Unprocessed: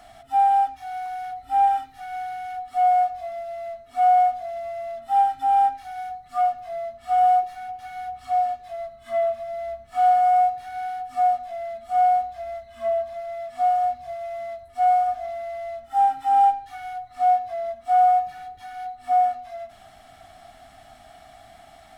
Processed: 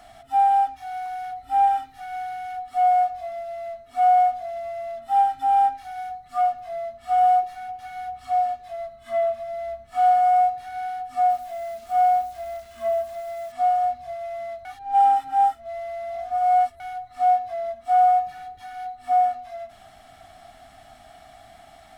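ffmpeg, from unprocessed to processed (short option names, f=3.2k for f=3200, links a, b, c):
-filter_complex "[0:a]asettb=1/sr,asplit=3[a][b][c];[a]atrim=end=11.304[d];[b]atrim=start=11.3:end=13.52,asetpts=PTS-STARTPTS,afade=t=in:d=0.004:c=qsin,afade=t=out:st=2.216:d=0.004:c=qsin,acrusher=bits=9:dc=4:mix=0:aa=0.000001[e];[c]atrim=start=13.516[f];[d][e]acrossfade=d=0.004:c1=hsin:c2=qsin[g];[g][f]acrossfade=d=0.004:c1=qsin:c2=hsin,asplit=3[h][i][j];[h]atrim=end=14.652[k];[i]atrim=start=14.648:end=16.802,asetpts=PTS-STARTPTS,areverse[l];[j]atrim=start=16.798[m];[k][l]acrossfade=d=0.004:c1=hsin:c2=hsin[n];[n][m]acrossfade=d=0.004:c1=hsin:c2=hsin"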